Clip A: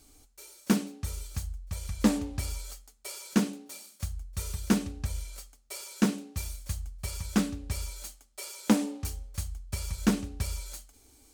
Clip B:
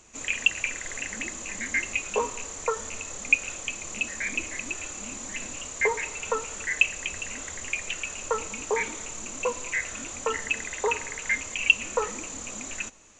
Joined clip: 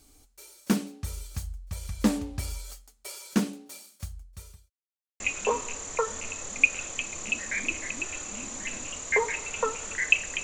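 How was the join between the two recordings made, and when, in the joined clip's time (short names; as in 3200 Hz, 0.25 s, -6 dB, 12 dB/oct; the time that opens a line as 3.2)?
clip A
3.76–4.7 fade out linear
4.7–5.2 mute
5.2 switch to clip B from 1.89 s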